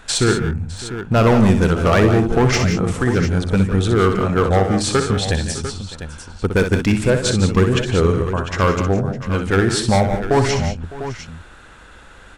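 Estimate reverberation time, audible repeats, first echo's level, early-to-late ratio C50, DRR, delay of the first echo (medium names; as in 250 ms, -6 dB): no reverb, 4, -7.5 dB, no reverb, no reverb, 62 ms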